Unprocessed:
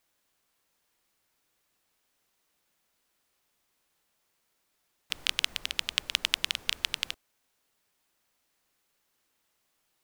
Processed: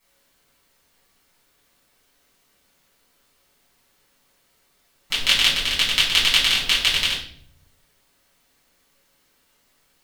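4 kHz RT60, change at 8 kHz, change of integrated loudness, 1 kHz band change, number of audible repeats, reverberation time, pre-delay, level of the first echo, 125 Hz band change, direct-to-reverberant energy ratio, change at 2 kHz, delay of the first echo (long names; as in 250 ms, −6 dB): 0.50 s, +11.0 dB, +12.5 dB, +12.5 dB, no echo audible, 0.60 s, 4 ms, no echo audible, +17.0 dB, −9.5 dB, +12.5 dB, no echo audible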